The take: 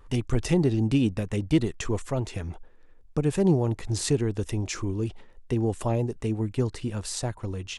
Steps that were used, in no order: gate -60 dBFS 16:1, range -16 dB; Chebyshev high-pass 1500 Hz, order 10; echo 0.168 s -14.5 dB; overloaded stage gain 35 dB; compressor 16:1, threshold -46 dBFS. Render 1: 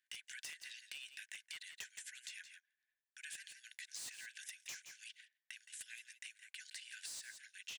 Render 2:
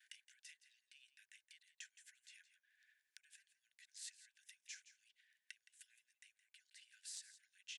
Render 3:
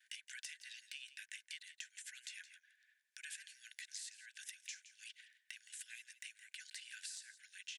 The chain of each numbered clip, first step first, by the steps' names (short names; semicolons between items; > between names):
Chebyshev high-pass > overloaded stage > echo > compressor > gate; compressor > gate > Chebyshev high-pass > overloaded stage > echo; gate > Chebyshev high-pass > compressor > overloaded stage > echo